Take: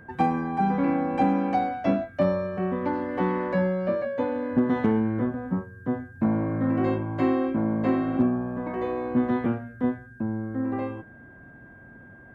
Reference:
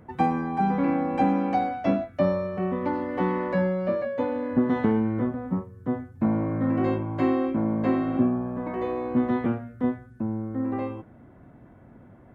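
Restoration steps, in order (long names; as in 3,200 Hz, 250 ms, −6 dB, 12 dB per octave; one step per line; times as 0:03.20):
clipped peaks rebuilt −12.5 dBFS
notch filter 1,600 Hz, Q 30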